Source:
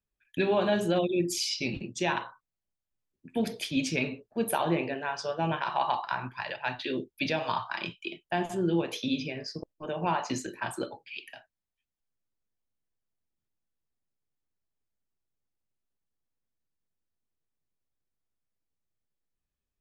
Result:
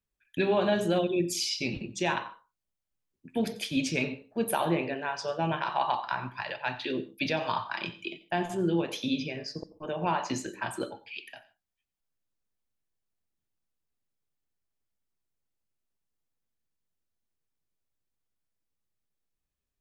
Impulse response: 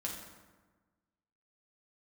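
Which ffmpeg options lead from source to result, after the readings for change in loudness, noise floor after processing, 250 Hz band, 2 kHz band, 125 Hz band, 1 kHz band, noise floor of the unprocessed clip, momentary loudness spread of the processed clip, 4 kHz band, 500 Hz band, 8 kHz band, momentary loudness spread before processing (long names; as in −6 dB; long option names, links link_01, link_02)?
0.0 dB, below −85 dBFS, 0.0 dB, 0.0 dB, 0.0 dB, 0.0 dB, below −85 dBFS, 11 LU, 0.0 dB, 0.0 dB, 0.0 dB, 11 LU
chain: -filter_complex "[0:a]asplit=2[link_01][link_02];[1:a]atrim=start_sample=2205,atrim=end_sample=3087,adelay=89[link_03];[link_02][link_03]afir=irnorm=-1:irlink=0,volume=-16dB[link_04];[link_01][link_04]amix=inputs=2:normalize=0"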